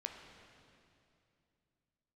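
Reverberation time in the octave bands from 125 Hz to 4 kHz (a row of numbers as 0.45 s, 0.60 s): 3.4 s, 3.1 s, 2.8 s, 2.5 s, 2.4 s, 2.4 s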